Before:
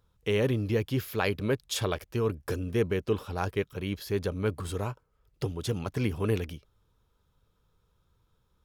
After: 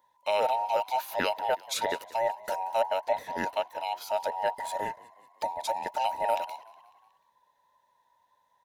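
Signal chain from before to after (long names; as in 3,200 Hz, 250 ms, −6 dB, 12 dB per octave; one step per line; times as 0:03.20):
frequency inversion band by band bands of 1,000 Hz
high-pass filter 180 Hz 6 dB per octave
on a send: echo with shifted repeats 183 ms, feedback 54%, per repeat +44 Hz, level −21 dB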